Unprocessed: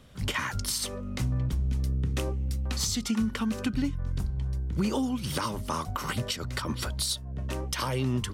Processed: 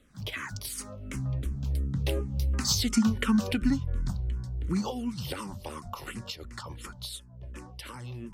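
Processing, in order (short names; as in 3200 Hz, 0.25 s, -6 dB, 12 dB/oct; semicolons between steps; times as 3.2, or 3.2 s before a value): Doppler pass-by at 3.1, 18 m/s, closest 17 m; endless phaser -2.8 Hz; gain +6 dB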